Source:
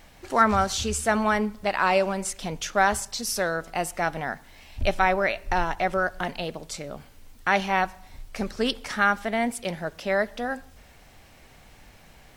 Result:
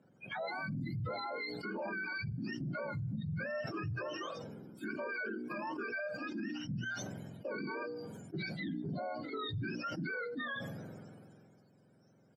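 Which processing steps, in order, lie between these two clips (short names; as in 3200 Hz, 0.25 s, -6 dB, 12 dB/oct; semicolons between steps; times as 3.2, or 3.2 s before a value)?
spectrum mirrored in octaves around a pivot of 940 Hz; Bessel high-pass 220 Hz, order 8; spectral noise reduction 20 dB; LPF 1500 Hz 12 dB/oct; bell 1000 Hz -10.5 dB 0.93 oct; notches 60/120/180/240/300/360/420/480 Hz; comb 1.3 ms, depth 50%; compressor 6:1, threshold -41 dBFS, peak gain reduction 21.5 dB; limiter -43.5 dBFS, peak gain reduction 13 dB; sustainer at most 24 dB/s; gain +11 dB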